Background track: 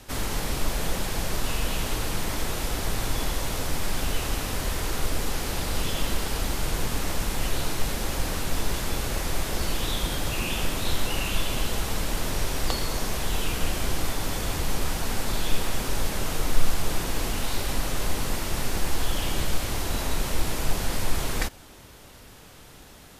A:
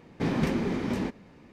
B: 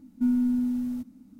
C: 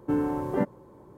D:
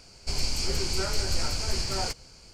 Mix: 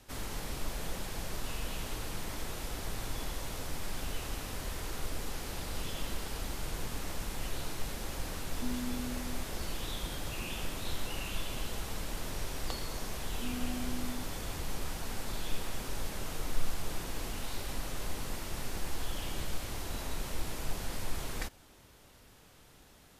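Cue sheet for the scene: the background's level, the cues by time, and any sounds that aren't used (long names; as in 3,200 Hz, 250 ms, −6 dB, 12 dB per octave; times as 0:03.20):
background track −10.5 dB
0:08.41: mix in B −15 dB
0:13.21: mix in B −12.5 dB + slew-rate limiting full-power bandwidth 12 Hz
not used: A, C, D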